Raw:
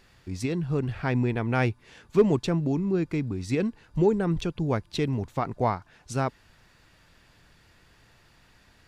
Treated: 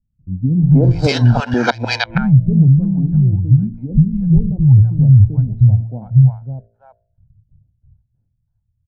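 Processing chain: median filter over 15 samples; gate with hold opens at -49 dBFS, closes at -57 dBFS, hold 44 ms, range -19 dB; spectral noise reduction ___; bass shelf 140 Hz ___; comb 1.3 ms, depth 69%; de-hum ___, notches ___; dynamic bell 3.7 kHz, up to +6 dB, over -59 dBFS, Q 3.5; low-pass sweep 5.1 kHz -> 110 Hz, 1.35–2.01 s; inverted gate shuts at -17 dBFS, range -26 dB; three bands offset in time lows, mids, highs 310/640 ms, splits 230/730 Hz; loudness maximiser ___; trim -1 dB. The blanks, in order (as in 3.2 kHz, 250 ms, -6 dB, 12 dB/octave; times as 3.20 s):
10 dB, -5 dB, 57.14 Hz, 12, +22 dB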